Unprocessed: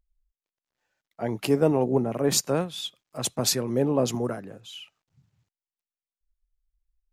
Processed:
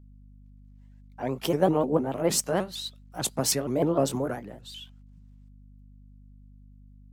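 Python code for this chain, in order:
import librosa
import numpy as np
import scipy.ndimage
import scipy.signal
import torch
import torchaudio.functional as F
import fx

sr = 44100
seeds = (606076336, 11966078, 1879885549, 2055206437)

y = fx.pitch_ramps(x, sr, semitones=4.0, every_ms=153)
y = fx.add_hum(y, sr, base_hz=50, snr_db=21)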